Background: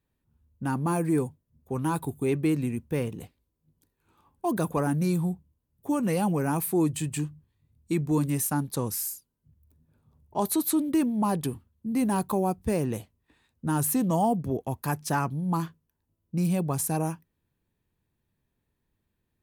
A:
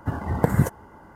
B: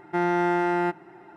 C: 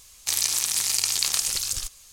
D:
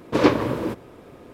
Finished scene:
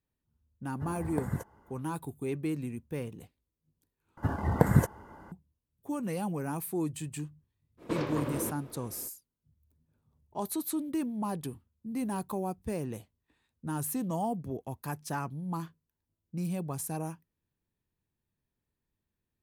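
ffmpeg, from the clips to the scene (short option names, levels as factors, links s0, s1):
-filter_complex "[1:a]asplit=2[s0][s1];[0:a]volume=0.398[s2];[4:a]acompressor=threshold=0.0708:ratio=6:attack=3.2:release=140:knee=1:detection=peak[s3];[s2]asplit=2[s4][s5];[s4]atrim=end=4.174[s6];[s1]atrim=end=1.15,asetpts=PTS-STARTPTS,volume=0.708[s7];[s5]atrim=start=5.316[s8];[s0]atrim=end=1.15,asetpts=PTS-STARTPTS,volume=0.2,afade=t=in:d=0.1,afade=t=out:st=1.05:d=0.1,adelay=740[s9];[s3]atrim=end=1.33,asetpts=PTS-STARTPTS,volume=0.473,afade=t=in:d=0.05,afade=t=out:st=1.28:d=0.05,adelay=7770[s10];[s6][s7]acrossfade=d=0.004:c1=hsin:c2=hsin[s11];[s11][s8]acrossfade=d=0.004:c1=hsin:c2=hsin[s12];[s12][s9][s10]amix=inputs=3:normalize=0"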